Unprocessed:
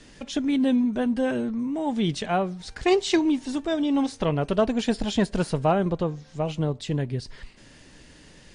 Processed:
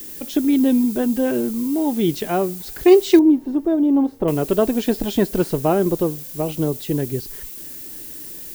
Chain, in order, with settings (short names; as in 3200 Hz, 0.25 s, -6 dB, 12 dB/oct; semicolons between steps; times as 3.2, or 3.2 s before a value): bell 350 Hz +11 dB 0.86 oct; added noise violet -35 dBFS; 3.19–4.28 EQ curve 850 Hz 0 dB, 2600 Hz -14 dB, 7400 Hz -21 dB